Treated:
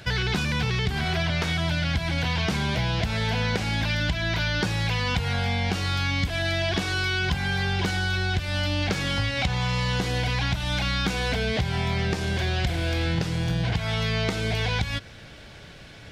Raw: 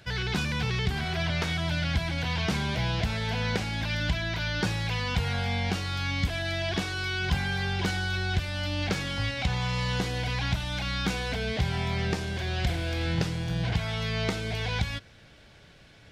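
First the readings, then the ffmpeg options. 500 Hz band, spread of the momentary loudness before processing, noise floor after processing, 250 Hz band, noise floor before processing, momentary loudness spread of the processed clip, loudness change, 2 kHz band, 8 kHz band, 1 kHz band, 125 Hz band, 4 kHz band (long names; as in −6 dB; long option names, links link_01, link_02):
+4.0 dB, 2 LU, −45 dBFS, +3.0 dB, −54 dBFS, 1 LU, +3.5 dB, +4.0 dB, +3.5 dB, +3.5 dB, +3.5 dB, +4.0 dB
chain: -af "acompressor=threshold=-31dB:ratio=6,volume=9dB"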